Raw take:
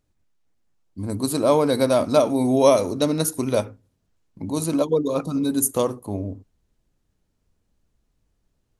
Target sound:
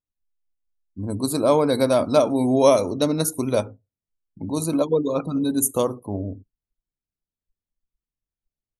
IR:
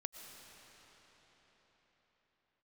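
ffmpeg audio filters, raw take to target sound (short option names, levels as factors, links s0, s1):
-af "afftdn=nr=24:nf=-43"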